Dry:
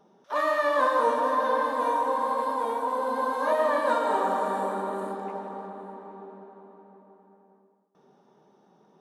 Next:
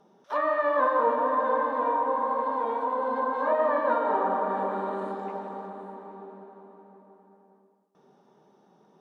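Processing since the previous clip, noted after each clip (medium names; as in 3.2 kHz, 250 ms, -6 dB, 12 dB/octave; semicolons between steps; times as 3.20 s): low-pass that closes with the level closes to 1.8 kHz, closed at -23 dBFS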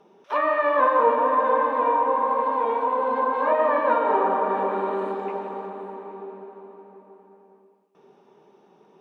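fifteen-band graphic EQ 400 Hz +8 dB, 1 kHz +4 dB, 2.5 kHz +12 dB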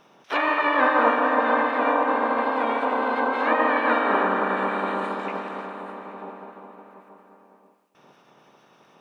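spectral peaks clipped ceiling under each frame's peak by 20 dB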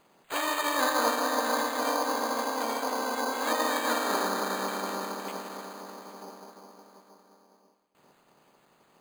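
careless resampling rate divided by 8×, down none, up hold; trim -7 dB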